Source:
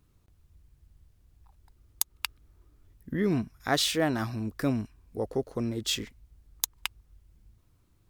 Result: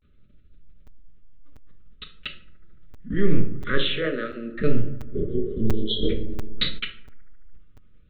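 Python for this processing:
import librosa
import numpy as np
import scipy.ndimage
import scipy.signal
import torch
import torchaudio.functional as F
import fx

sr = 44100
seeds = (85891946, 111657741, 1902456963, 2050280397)

p1 = fx.lpc_vocoder(x, sr, seeds[0], excitation='pitch_kept', order=8)
p2 = scipy.signal.sosfilt(scipy.signal.ellip(3, 1.0, 40, [570.0, 1200.0], 'bandstop', fs=sr, output='sos'), p1)
p3 = fx.dynamic_eq(p2, sr, hz=1300.0, q=0.78, threshold_db=-53.0, ratio=4.0, max_db=-4, at=(2.12, 3.23))
p4 = fx.spec_repair(p3, sr, seeds[1], start_s=5.21, length_s=0.84, low_hz=390.0, high_hz=3000.0, source='before')
p5 = fx.vibrato(p4, sr, rate_hz=0.5, depth_cents=97.0)
p6 = fx.rider(p5, sr, range_db=10, speed_s=0.5)
p7 = p5 + (p6 * librosa.db_to_amplitude(-1.5))
p8 = fx.highpass(p7, sr, hz=250.0, slope=24, at=(3.86, 4.52))
p9 = fx.echo_bbd(p8, sr, ms=73, stages=1024, feedback_pct=79, wet_db=-22.5)
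p10 = fx.room_shoebox(p9, sr, seeds[2], volume_m3=640.0, walls='furnished', distance_m=1.4)
p11 = fx.buffer_crackle(p10, sr, first_s=0.87, period_s=0.69, block=256, kind='zero')
y = fx.env_flatten(p11, sr, amount_pct=50, at=(6.02, 6.78), fade=0.02)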